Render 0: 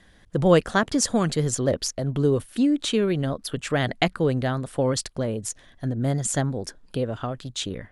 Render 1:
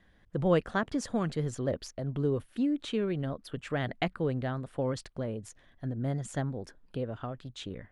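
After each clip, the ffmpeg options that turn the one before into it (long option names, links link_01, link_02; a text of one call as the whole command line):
ffmpeg -i in.wav -af "deesser=0.3,bass=frequency=250:gain=1,treble=frequency=4000:gain=-11,volume=-8.5dB" out.wav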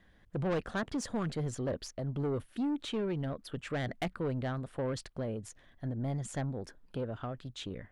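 ffmpeg -i in.wav -af "asoftclip=type=tanh:threshold=-28dB" out.wav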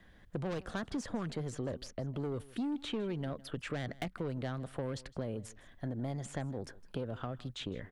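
ffmpeg -i in.wav -filter_complex "[0:a]acrossover=split=250|3500[link_01][link_02][link_03];[link_01]acompressor=threshold=-44dB:ratio=4[link_04];[link_02]acompressor=threshold=-42dB:ratio=4[link_05];[link_03]acompressor=threshold=-55dB:ratio=4[link_06];[link_04][link_05][link_06]amix=inputs=3:normalize=0,aecho=1:1:159:0.0944,volume=3.5dB" out.wav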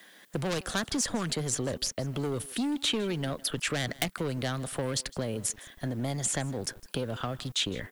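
ffmpeg -i in.wav -filter_complex "[0:a]acrossover=split=220[link_01][link_02];[link_01]aeval=exprs='val(0)*gte(abs(val(0)),0.00251)':channel_layout=same[link_03];[link_02]crystalizer=i=5.5:c=0[link_04];[link_03][link_04]amix=inputs=2:normalize=0,volume=5dB" out.wav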